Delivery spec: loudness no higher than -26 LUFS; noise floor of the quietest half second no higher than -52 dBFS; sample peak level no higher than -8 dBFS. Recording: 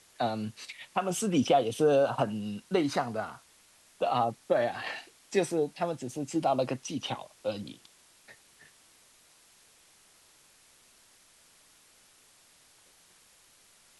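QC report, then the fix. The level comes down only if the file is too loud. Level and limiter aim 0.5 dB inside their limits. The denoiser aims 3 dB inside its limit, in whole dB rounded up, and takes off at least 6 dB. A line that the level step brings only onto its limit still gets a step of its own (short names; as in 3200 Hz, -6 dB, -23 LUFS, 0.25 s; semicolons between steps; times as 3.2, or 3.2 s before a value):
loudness -30.5 LUFS: OK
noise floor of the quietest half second -61 dBFS: OK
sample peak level -13.0 dBFS: OK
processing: none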